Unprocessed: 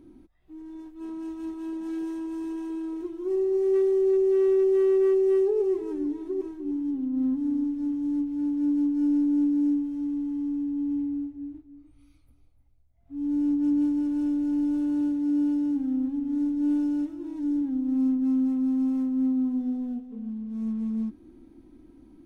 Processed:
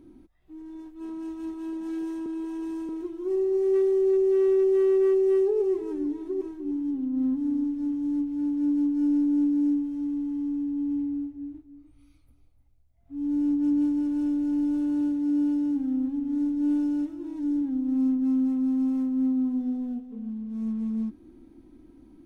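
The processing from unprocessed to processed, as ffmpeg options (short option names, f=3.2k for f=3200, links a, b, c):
-filter_complex "[0:a]asplit=3[a][b][c];[a]atrim=end=2.262[d];[b]atrim=start=2.258:end=2.892,asetpts=PTS-STARTPTS,areverse[e];[c]atrim=start=2.888[f];[d][e]acrossfade=d=0.004:c1=hsin:c2=hsin[g];[g][f]acrossfade=d=0.004:c1=hsin:c2=hsin"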